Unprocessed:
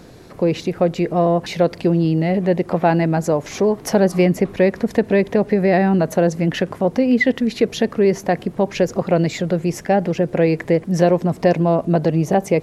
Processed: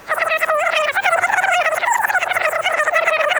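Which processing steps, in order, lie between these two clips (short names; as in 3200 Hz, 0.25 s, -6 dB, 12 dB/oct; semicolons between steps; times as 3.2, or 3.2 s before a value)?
spectral swells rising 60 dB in 0.38 s; dynamic EQ 1700 Hz, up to -7 dB, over -33 dBFS, Q 0.85; wide varispeed 3.72×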